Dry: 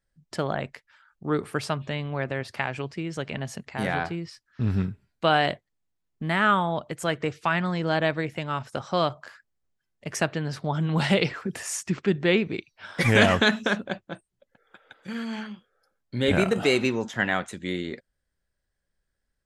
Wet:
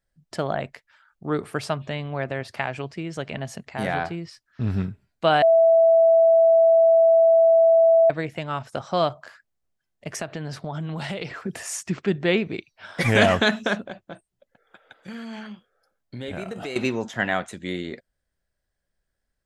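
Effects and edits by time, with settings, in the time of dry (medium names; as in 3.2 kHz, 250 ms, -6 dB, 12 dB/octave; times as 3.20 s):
5.42–8.10 s: bleep 659 Hz -17 dBFS
10.07–11.46 s: compression, threshold -27 dBFS
13.85–16.76 s: compression 3:1, threshold -33 dBFS
whole clip: peaking EQ 670 Hz +5 dB 0.37 oct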